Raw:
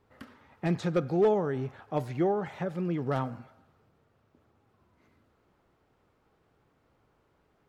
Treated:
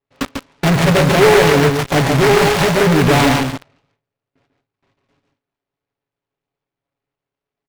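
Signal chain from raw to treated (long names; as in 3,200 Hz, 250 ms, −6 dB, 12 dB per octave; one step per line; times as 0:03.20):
pitch shifter gated in a rhythm +1.5 semitones, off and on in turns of 286 ms
low-pass filter 1,800 Hz 24 dB per octave
noise gate with hold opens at −56 dBFS
low-shelf EQ 360 Hz −5 dB
comb filter 7.2 ms, depth 91%
dynamic equaliser 1,000 Hz, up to +3 dB, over −50 dBFS, Q 4
in parallel at −5 dB: fuzz pedal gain 52 dB, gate −47 dBFS
on the sum: single-tap delay 144 ms −4.5 dB
short delay modulated by noise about 1,200 Hz, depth 0.15 ms
level +4.5 dB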